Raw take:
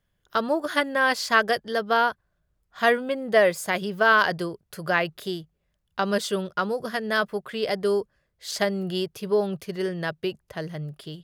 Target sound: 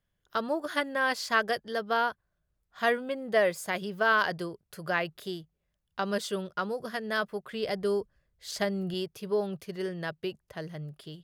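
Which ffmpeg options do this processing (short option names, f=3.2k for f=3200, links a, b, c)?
-filter_complex "[0:a]asettb=1/sr,asplit=3[a][b][c];[a]atrim=end=7.514[d];[b]atrim=start=7.51:end=8.94,asetpts=PTS-STARTPTS,afade=t=in:d=0.004:c=qsin,afade=t=out:st=1.426:d=0.004:c=qsin,lowshelf=f=110:g=11.5[e];[c]atrim=start=8.936[f];[d][e]acrossfade=d=0.004:c1=hsin:c2=qsin[g];[g][f]acrossfade=d=0.004:c1=qsin:c2=hsin,volume=-6dB"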